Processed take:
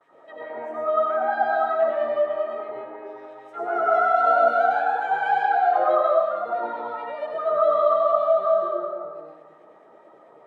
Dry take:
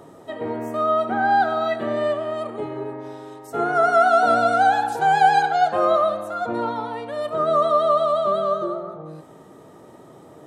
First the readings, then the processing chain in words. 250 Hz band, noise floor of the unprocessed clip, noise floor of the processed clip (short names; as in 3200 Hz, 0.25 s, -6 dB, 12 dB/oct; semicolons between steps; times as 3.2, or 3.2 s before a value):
-11.5 dB, -46 dBFS, -52 dBFS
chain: gate with hold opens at -38 dBFS; wah 4.6 Hz 520–2200 Hz, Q 2.5; digital reverb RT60 1.2 s, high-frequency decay 0.75×, pre-delay 55 ms, DRR -4 dB; gain -2.5 dB